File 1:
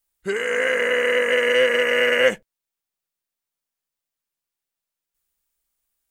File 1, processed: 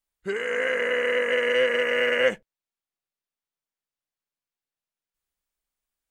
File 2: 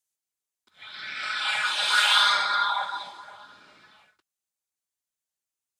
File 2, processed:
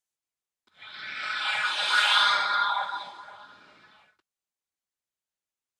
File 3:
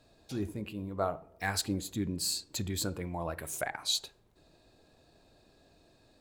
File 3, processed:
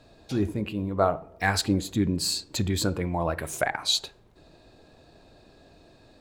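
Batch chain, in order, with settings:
treble shelf 6.7 kHz -10 dB; peak normalisation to -9 dBFS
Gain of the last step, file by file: -4.0 dB, 0.0 dB, +9.0 dB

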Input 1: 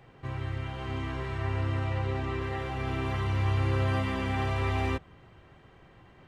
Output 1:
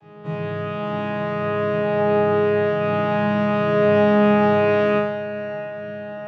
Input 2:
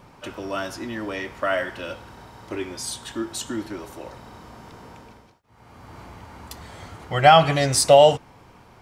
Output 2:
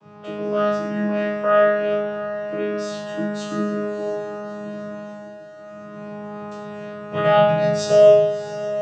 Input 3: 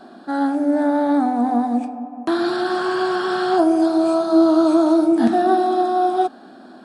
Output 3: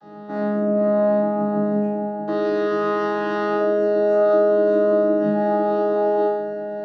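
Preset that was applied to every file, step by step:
vocoder on a held chord minor triad, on C#3; band-stop 2.1 kHz, Q 19; dynamic bell 820 Hz, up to -6 dB, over -37 dBFS, Q 3.5; compression 6:1, threshold -21 dBFS; chord resonator G#2 fifth, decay 0.83 s; echo that smears into a reverb 656 ms, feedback 62%, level -14 dB; normalise loudness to -20 LUFS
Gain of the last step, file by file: +26.5 dB, +21.0 dB, +17.0 dB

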